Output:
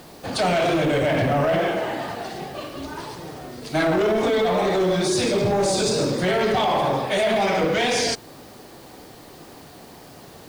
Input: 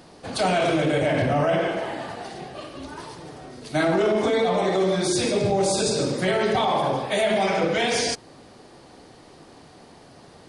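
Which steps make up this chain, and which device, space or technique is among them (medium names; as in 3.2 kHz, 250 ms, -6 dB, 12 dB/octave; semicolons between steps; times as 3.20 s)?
compact cassette (saturation -19 dBFS, distortion -15 dB; low-pass 8.8 kHz; wow and flutter; white noise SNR 30 dB); trim +4 dB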